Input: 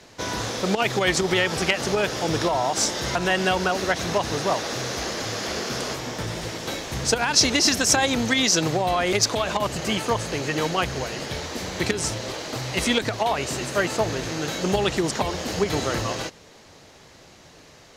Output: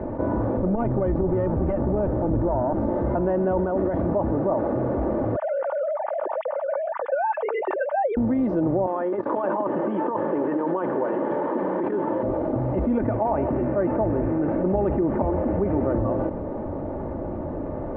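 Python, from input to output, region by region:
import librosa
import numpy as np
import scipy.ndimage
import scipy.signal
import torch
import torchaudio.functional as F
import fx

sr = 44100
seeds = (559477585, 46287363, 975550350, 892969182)

y = fx.chain(x, sr, fx.lowpass(hz=8400.0, slope=12),
    fx.peak_eq(hz=60.0, db=11.5, octaves=2.9),
    fx.tube_stage(drive_db=17.0, bias=0.6), at=(0.57, 2.89))
y = fx.chain(y, sr, fx.over_compress(threshold_db=-27.0, ratio=-1.0),
    fx.small_body(hz=(1900.0, 3300.0), ring_ms=45, db=9), at=(3.58, 4.01))
y = fx.chain(y, sr, fx.sine_speech(),
    fx.highpass(hz=650.0, slope=12), at=(5.36, 8.17))
y = fx.chain(y, sr, fx.over_compress(threshold_db=-26.0, ratio=-0.5),
    fx.cabinet(low_hz=220.0, low_slope=24, high_hz=5200.0, hz=(250.0, 670.0, 1000.0, 1700.0, 3200.0, 5000.0), db=(-8, -6, 7, 7, 6, -9)), at=(8.86, 12.23))
y = fx.chain(y, sr, fx.lowpass_res(hz=2400.0, q=2.1),
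    fx.echo_single(ms=166, db=-15.5), at=(12.92, 15.93))
y = scipy.signal.sosfilt(scipy.signal.bessel(4, 590.0, 'lowpass', norm='mag', fs=sr, output='sos'), y)
y = y + 0.46 * np.pad(y, (int(3.4 * sr / 1000.0), 0))[:len(y)]
y = fx.env_flatten(y, sr, amount_pct=70)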